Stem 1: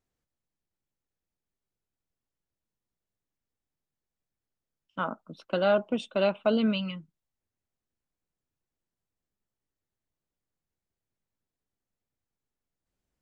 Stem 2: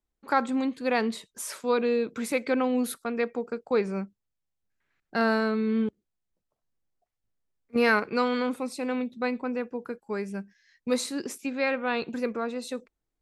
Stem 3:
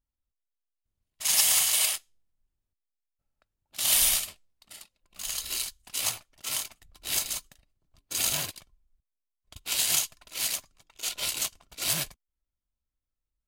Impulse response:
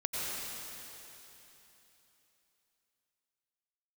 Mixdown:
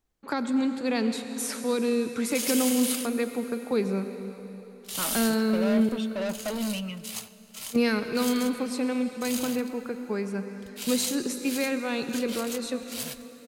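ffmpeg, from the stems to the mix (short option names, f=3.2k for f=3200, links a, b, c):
-filter_complex "[0:a]asoftclip=type=tanh:threshold=-29dB,volume=0.5dB,asplit=2[a][b];[b]volume=-22dB[c];[1:a]acrossover=split=380|3000[d][e][f];[e]acompressor=threshold=-39dB:ratio=3[g];[d][g][f]amix=inputs=3:normalize=0,volume=1.5dB,asplit=2[h][i];[i]volume=-10.5dB[j];[2:a]adelay=1100,volume=-8.5dB,asplit=2[k][l];[l]volume=-22.5dB[m];[3:a]atrim=start_sample=2205[n];[c][j][m]amix=inputs=3:normalize=0[o];[o][n]afir=irnorm=-1:irlink=0[p];[a][h][k][p]amix=inputs=4:normalize=0"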